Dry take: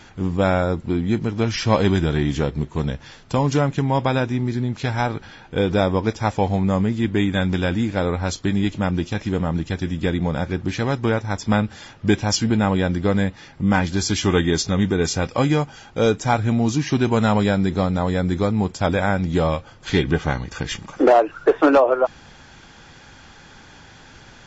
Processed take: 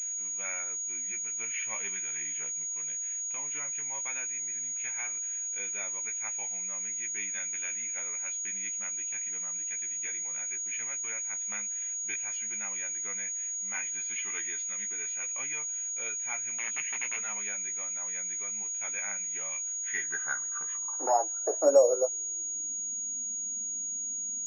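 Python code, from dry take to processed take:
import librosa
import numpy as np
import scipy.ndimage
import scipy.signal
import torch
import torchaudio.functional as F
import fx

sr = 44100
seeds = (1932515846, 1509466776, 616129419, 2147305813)

y = fx.overflow_wrap(x, sr, gain_db=12.5, at=(16.58, 17.17))
y = fx.chorus_voices(y, sr, voices=4, hz=0.36, base_ms=17, depth_ms=3.1, mix_pct=30)
y = fx.filter_sweep_bandpass(y, sr, from_hz=2300.0, to_hz=240.0, start_s=19.72, end_s=22.92, q=6.1)
y = fx.pwm(y, sr, carrier_hz=6700.0)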